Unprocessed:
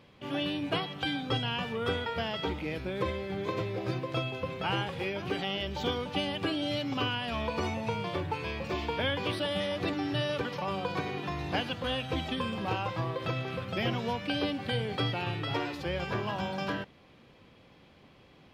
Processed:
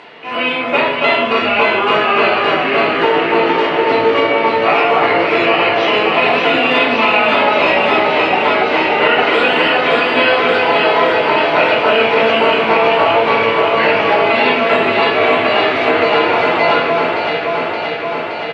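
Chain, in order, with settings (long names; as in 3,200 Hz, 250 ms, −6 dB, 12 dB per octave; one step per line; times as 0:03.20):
upward compression, threshold −47 dBFS
pitch shifter −2.5 semitones
band-pass filter 550–3,700 Hz
delay that swaps between a low-pass and a high-pass 286 ms, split 1,600 Hz, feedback 86%, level −2 dB
convolution reverb RT60 0.80 s, pre-delay 7 ms, DRR −5 dB
boost into a limiter +16 dB
level −1 dB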